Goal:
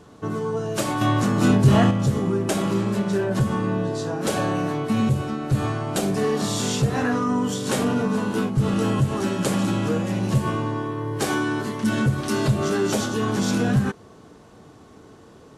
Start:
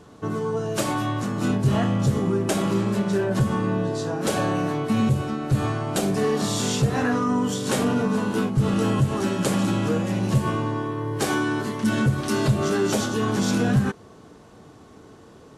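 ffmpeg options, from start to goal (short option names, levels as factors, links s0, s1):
-filter_complex "[0:a]asettb=1/sr,asplit=3[s0][s1][s2];[s0]atrim=end=1.014[s3];[s1]atrim=start=1.01:end=1.91,asetpts=PTS-STARTPTS,afade=t=in:d=0.004:c=qsin,afade=t=out:st=0.896:d=0.004:c=qsin,acontrast=51[s4];[s2]atrim=start=1.906[s5];[s3][s4]acrossfade=d=0.004:c1=hsin:c2=qsin[s6];[s6][s5]acrossfade=d=0.004:c1=qsin:c2=hsin"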